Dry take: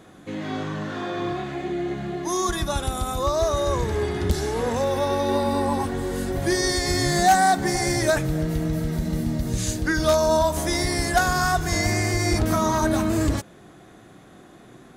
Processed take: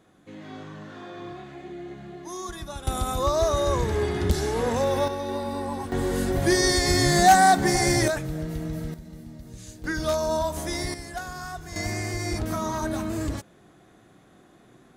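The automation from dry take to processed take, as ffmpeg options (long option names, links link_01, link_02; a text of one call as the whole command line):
ffmpeg -i in.wav -af "asetnsamples=nb_out_samples=441:pad=0,asendcmd='2.87 volume volume -0.5dB;5.08 volume volume -7.5dB;5.92 volume volume 1.5dB;8.08 volume volume -6.5dB;8.94 volume volume -17dB;9.84 volume volume -6dB;10.94 volume volume -14.5dB;11.76 volume volume -7dB',volume=-11dB" out.wav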